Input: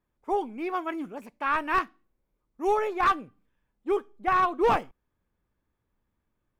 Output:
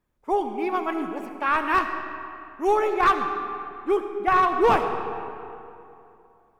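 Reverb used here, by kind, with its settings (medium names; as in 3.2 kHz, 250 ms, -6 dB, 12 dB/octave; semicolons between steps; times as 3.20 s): algorithmic reverb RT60 2.8 s, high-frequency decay 0.6×, pre-delay 30 ms, DRR 6.5 dB; trim +3.5 dB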